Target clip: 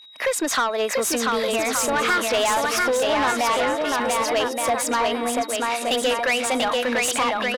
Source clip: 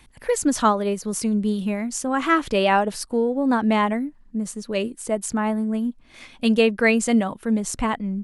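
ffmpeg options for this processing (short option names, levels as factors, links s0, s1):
-filter_complex "[0:a]agate=range=0.0224:threshold=0.00891:ratio=3:detection=peak,highpass=400,highshelf=f=7400:g=-9.5,acompressor=threshold=0.0316:ratio=4,aecho=1:1:750|1275|1642|1900|2080:0.631|0.398|0.251|0.158|0.1,asplit=2[s0][s1];[s1]highpass=f=720:p=1,volume=14.1,asoftclip=type=tanh:threshold=0.224[s2];[s0][s2]amix=inputs=2:normalize=0,lowpass=f=6900:p=1,volume=0.501,aeval=exprs='val(0)+0.00562*sin(2*PI*3500*n/s)':c=same,asetrate=48000,aresample=44100,volume=1.12"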